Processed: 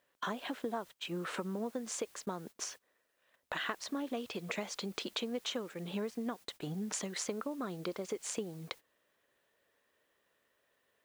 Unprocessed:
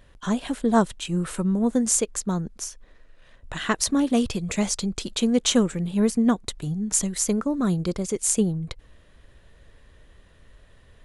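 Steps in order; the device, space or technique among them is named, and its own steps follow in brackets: baby monitor (band-pass 390–3600 Hz; compression 10:1, threshold -41 dBFS, peak gain reduction 25 dB; white noise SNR 22 dB; gate -54 dBFS, range -21 dB); trim +6 dB

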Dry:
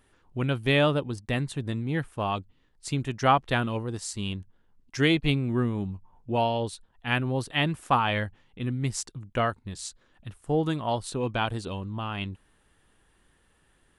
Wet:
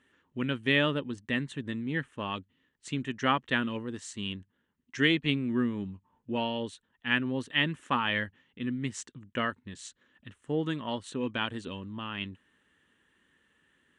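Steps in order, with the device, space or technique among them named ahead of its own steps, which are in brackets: car door speaker (cabinet simulation 110–8000 Hz, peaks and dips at 120 Hz -5 dB, 250 Hz +6 dB, 730 Hz -10 dB, 1.8 kHz +8 dB, 3 kHz +6 dB, 4.9 kHz -9 dB); trim -4.5 dB

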